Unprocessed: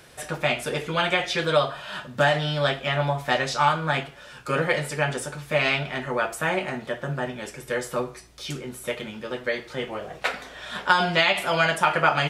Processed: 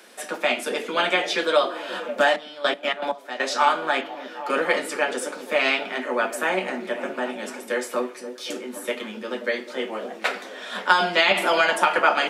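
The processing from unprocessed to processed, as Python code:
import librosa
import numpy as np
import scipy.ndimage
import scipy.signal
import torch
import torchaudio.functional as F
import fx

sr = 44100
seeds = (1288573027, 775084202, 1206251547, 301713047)

y = fx.peak_eq(x, sr, hz=8500.0, db=-13.5, octaves=0.69, at=(4.01, 4.5))
y = fx.echo_stepped(y, sr, ms=264, hz=270.0, octaves=0.7, feedback_pct=70, wet_db=-7)
y = fx.step_gate(y, sr, bpm=159, pattern='x...x.x.', floor_db=-12.0, edge_ms=4.5, at=(2.29, 3.45), fade=0.02)
y = scipy.signal.sosfilt(scipy.signal.butter(16, 190.0, 'highpass', fs=sr, output='sos'), y)
y = fx.band_squash(y, sr, depth_pct=70, at=(11.31, 11.99))
y = y * 10.0 ** (1.5 / 20.0)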